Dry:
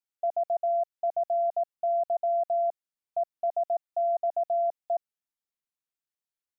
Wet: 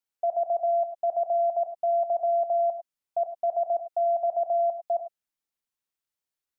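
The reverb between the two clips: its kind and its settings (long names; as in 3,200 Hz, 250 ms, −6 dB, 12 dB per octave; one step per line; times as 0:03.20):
reverb whose tail is shaped and stops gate 120 ms rising, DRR 7.5 dB
level +2 dB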